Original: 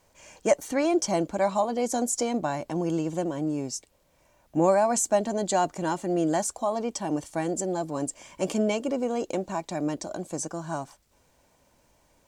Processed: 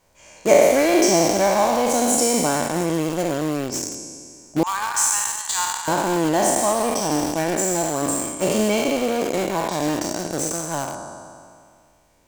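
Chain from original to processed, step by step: spectral sustain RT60 2.18 s; 4.63–5.88 s: steep high-pass 890 Hz 72 dB/octave; 6.73–7.33 s: band-stop 7.1 kHz, Q 5.7; in parallel at -6.5 dB: bit crusher 4-bit

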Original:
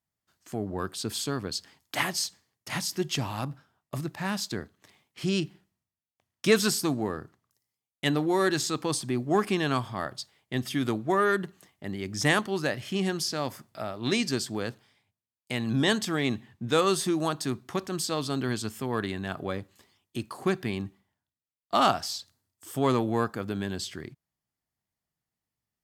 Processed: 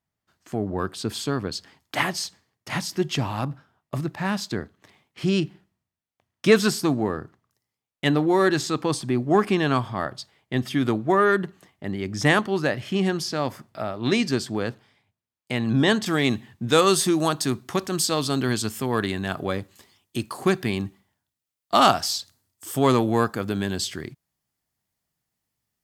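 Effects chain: treble shelf 4.3 kHz -9 dB, from 16.06 s +3.5 dB; trim +5.5 dB

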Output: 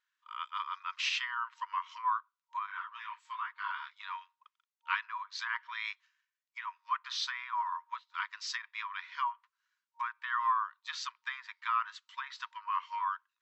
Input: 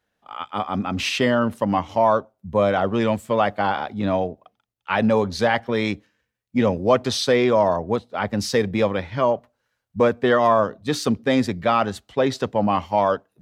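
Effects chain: low-pass that closes with the level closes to 1.6 kHz, closed at -14.5 dBFS; FFT band-pass 930–7900 Hz; 2.66–3.96 s: detune thickener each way 35 cents; trim -7 dB

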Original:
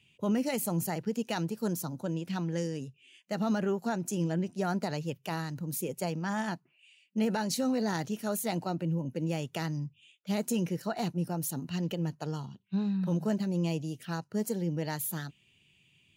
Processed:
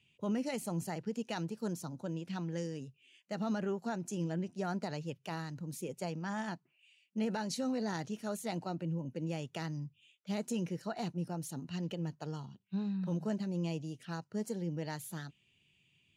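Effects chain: low-pass 8.7 kHz 12 dB/octave; trim -5.5 dB

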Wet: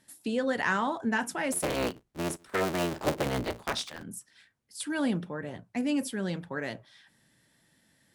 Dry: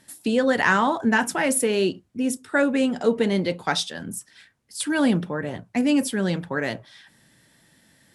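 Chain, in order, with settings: 1.52–4.03 s: cycle switcher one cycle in 3, inverted; trim -8.5 dB

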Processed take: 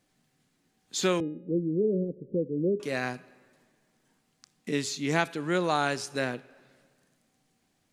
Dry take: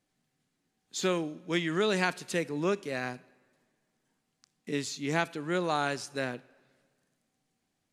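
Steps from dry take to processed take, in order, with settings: 1.20–2.80 s: steep low-pass 550 Hz 96 dB/octave; de-hum 414.8 Hz, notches 9; in parallel at -2 dB: compression, threshold -44 dBFS, peak gain reduction 20.5 dB; on the sum: trim +2 dB

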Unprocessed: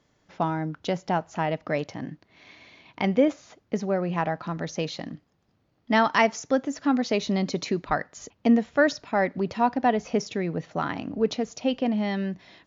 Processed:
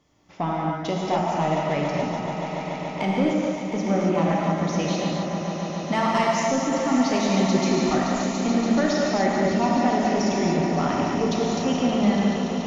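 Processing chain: graphic EQ with 31 bands 500 Hz -4 dB, 1.6 kHz -9 dB, 4 kHz -4 dB; peak limiter -16 dBFS, peak gain reduction 6.5 dB; saturation -18.5 dBFS, distortion -19 dB; on a send: echo with a slow build-up 143 ms, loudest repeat 5, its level -12.5 dB; on the sum: gated-style reverb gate 310 ms flat, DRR -3 dB; trim +1.5 dB

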